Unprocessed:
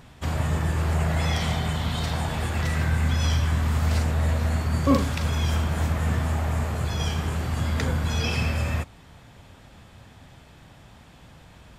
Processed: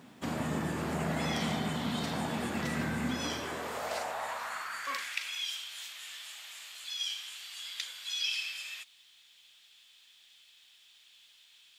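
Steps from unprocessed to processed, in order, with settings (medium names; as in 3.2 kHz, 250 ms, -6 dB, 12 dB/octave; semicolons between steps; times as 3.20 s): high-pass sweep 230 Hz -> 3.3 kHz, 3.01–5.54 s; bit crusher 11-bit; trim -5.5 dB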